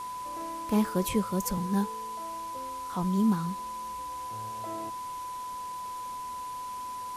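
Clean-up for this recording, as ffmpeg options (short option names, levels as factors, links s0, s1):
-af "bandreject=f=1000:w=30,afwtdn=0.0035"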